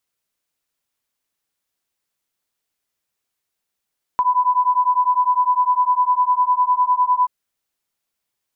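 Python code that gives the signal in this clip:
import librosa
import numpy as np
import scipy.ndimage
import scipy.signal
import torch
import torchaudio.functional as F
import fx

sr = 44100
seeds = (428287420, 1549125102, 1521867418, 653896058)

y = fx.two_tone_beats(sr, length_s=3.08, hz=992.0, beat_hz=9.9, level_db=-17.0)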